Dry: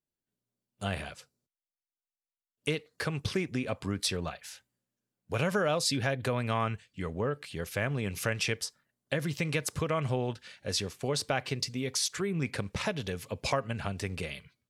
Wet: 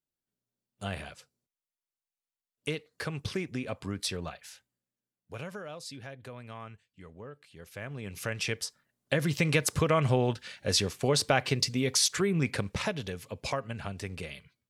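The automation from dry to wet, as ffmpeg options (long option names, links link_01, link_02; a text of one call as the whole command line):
ffmpeg -i in.wav -af "volume=16.5dB,afade=type=out:start_time=4.39:duration=1.24:silence=0.266073,afade=type=in:start_time=7.53:duration=0.5:silence=0.446684,afade=type=in:start_time=8.03:duration=1.46:silence=0.251189,afade=type=out:start_time=12.15:duration=1.05:silence=0.398107" out.wav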